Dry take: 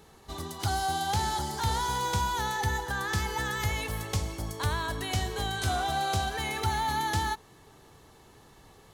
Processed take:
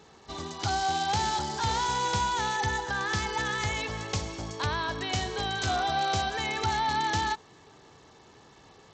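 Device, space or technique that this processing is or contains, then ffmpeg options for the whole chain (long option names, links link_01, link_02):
Bluetooth headset: -af "highpass=frequency=140:poles=1,aresample=16000,aresample=44100,volume=2dB" -ar 32000 -c:a sbc -b:a 64k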